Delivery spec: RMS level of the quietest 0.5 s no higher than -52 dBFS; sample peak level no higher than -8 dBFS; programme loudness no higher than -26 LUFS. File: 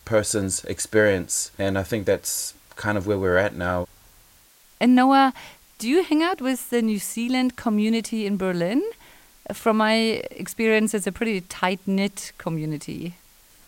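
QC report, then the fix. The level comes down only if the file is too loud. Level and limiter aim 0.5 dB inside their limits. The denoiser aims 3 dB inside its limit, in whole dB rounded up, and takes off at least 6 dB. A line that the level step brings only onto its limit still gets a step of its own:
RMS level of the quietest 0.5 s -54 dBFS: OK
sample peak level -5.0 dBFS: fail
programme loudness -23.0 LUFS: fail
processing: gain -3.5 dB

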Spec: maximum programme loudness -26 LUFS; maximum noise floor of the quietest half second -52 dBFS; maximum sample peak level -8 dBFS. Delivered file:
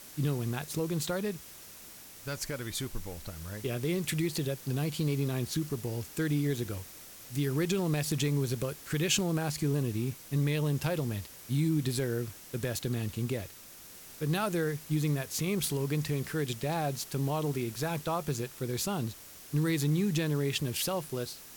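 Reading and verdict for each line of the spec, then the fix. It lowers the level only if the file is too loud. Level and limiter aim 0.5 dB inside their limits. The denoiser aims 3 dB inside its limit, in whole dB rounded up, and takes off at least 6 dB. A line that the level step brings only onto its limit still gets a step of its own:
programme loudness -32.0 LUFS: OK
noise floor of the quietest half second -50 dBFS: fail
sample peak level -15.0 dBFS: OK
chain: denoiser 6 dB, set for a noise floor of -50 dBFS

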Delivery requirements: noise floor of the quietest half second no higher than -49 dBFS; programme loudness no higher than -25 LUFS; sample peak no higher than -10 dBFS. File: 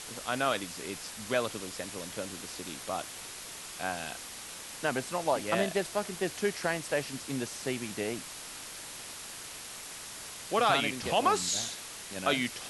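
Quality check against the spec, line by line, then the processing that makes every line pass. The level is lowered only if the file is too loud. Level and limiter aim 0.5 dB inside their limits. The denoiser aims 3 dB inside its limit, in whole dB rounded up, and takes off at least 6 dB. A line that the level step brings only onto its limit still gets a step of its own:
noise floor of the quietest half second -44 dBFS: fail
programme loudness -33.0 LUFS: OK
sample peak -13.5 dBFS: OK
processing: denoiser 8 dB, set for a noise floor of -44 dBFS

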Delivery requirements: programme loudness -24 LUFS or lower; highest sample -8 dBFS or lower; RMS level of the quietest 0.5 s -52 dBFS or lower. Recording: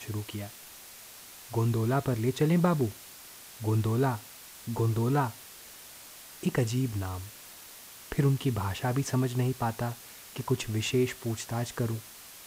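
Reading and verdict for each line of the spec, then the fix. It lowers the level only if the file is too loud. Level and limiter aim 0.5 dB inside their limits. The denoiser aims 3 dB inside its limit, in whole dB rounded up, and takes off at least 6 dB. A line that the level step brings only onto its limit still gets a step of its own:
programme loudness -30.0 LUFS: OK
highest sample -10.5 dBFS: OK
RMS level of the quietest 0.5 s -49 dBFS: fail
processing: denoiser 6 dB, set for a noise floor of -49 dBFS

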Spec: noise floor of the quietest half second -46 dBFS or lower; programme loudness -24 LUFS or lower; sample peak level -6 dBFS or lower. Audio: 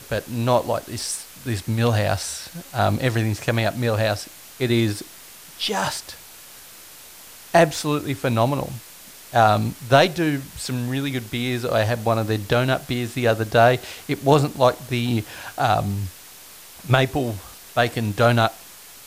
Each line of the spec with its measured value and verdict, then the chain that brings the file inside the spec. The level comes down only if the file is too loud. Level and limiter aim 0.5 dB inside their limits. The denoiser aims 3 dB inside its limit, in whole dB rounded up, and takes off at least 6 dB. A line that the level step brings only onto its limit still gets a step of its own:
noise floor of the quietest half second -43 dBFS: fail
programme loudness -22.0 LUFS: fail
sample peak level -1.5 dBFS: fail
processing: denoiser 6 dB, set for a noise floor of -43 dBFS; gain -2.5 dB; limiter -6.5 dBFS

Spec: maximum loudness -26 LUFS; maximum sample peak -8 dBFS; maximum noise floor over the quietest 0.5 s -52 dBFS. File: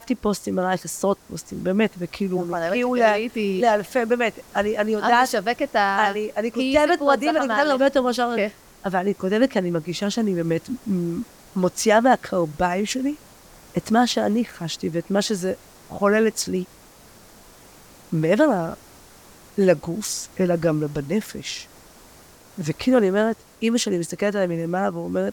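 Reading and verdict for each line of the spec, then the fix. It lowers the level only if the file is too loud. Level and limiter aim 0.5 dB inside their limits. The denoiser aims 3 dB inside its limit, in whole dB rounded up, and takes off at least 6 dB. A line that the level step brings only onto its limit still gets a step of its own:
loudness -22.0 LUFS: fail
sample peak -5.0 dBFS: fail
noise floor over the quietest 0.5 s -49 dBFS: fail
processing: gain -4.5 dB

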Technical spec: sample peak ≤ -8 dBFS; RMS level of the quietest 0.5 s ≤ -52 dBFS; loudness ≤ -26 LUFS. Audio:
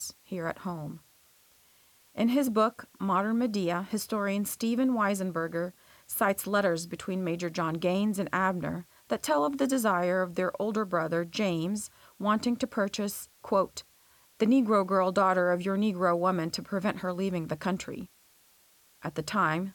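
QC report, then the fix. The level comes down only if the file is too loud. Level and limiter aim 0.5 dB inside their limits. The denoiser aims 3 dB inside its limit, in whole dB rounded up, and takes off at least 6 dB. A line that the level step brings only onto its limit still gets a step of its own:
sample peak -13.0 dBFS: OK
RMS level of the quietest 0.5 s -63 dBFS: OK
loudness -29.0 LUFS: OK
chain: none

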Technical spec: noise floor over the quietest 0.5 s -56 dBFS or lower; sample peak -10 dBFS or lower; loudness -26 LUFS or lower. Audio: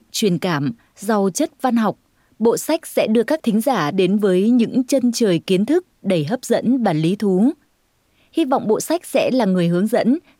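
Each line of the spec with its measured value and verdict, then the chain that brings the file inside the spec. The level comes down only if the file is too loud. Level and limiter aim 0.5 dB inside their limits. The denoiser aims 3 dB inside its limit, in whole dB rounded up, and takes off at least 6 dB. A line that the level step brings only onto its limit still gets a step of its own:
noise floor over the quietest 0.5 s -62 dBFS: OK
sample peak -4.0 dBFS: fail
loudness -18.5 LUFS: fail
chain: gain -8 dB

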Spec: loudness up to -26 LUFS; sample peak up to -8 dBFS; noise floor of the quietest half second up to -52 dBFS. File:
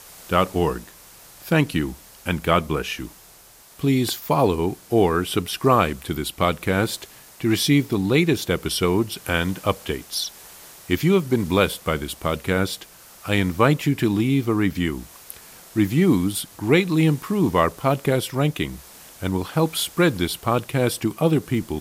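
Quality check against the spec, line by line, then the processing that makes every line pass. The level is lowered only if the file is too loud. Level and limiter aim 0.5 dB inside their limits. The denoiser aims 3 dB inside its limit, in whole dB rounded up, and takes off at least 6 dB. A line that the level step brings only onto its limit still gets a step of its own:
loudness -22.0 LUFS: fail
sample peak -3.5 dBFS: fail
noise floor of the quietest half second -49 dBFS: fail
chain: gain -4.5 dB; limiter -8.5 dBFS

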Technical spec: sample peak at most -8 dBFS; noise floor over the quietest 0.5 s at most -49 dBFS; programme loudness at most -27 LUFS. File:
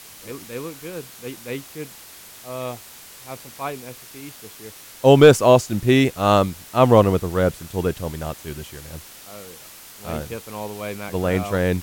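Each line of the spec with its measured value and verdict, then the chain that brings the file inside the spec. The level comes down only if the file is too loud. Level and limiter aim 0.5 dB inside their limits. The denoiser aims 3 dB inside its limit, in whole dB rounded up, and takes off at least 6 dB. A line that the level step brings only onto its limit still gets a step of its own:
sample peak -1.5 dBFS: fail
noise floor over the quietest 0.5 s -43 dBFS: fail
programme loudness -19.0 LUFS: fail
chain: gain -8.5 dB

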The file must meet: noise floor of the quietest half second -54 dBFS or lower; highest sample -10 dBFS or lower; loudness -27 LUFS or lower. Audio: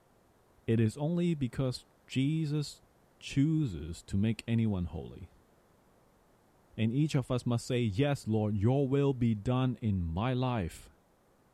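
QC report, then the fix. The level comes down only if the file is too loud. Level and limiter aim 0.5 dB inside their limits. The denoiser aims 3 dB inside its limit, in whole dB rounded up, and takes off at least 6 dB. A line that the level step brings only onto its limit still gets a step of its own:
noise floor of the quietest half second -67 dBFS: OK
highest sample -17.0 dBFS: OK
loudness -32.0 LUFS: OK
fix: none

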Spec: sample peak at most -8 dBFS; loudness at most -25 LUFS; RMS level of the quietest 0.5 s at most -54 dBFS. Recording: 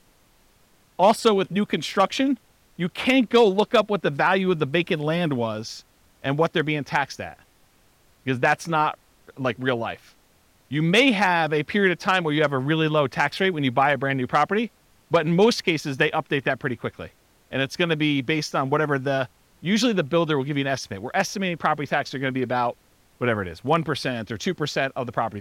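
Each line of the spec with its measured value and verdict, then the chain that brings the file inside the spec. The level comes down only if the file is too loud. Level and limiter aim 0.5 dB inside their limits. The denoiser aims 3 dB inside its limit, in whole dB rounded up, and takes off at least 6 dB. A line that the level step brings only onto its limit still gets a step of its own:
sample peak -7.5 dBFS: fail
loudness -23.0 LUFS: fail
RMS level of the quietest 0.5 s -59 dBFS: OK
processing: gain -2.5 dB

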